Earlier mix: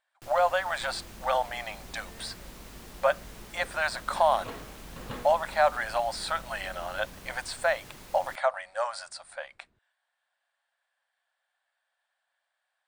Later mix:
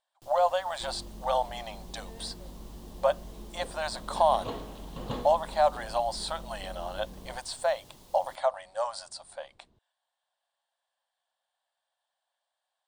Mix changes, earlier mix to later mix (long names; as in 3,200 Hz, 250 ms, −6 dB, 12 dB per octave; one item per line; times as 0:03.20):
first sound −6.0 dB
second sound +5.0 dB
master: add flat-topped bell 1,800 Hz −10 dB 1.2 octaves